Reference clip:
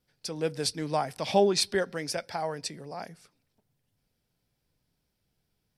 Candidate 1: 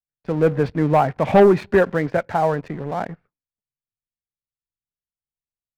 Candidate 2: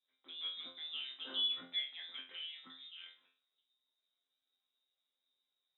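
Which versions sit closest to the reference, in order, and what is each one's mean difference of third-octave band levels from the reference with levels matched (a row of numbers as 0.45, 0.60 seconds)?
1, 2; 6.5, 15.5 decibels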